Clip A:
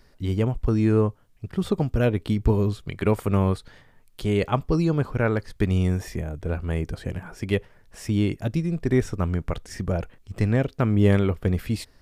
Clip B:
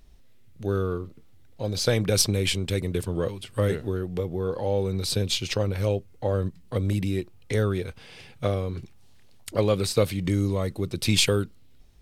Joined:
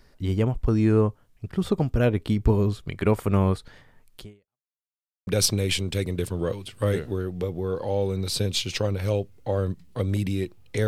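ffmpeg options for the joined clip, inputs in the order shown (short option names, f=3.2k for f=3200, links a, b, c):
-filter_complex "[0:a]apad=whole_dur=10.87,atrim=end=10.87,asplit=2[a][b];[a]atrim=end=4.69,asetpts=PTS-STARTPTS,afade=t=out:st=4.18:d=0.51:c=exp[c];[b]atrim=start=4.69:end=5.27,asetpts=PTS-STARTPTS,volume=0[d];[1:a]atrim=start=2.03:end=7.63,asetpts=PTS-STARTPTS,afade=t=in:d=0.004:c=hsin[e];[c][d][e]concat=n=3:v=0:a=1"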